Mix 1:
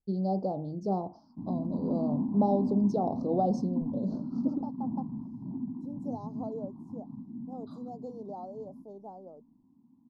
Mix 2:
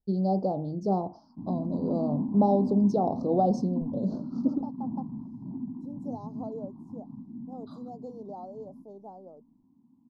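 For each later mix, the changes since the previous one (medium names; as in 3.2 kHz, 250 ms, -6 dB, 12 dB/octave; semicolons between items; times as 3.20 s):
first voice +3.5 dB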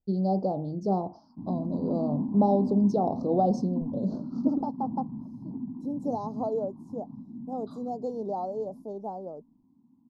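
second voice +9.5 dB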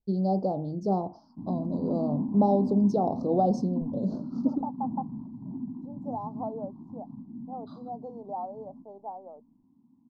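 second voice: add band-pass filter 890 Hz, Q 2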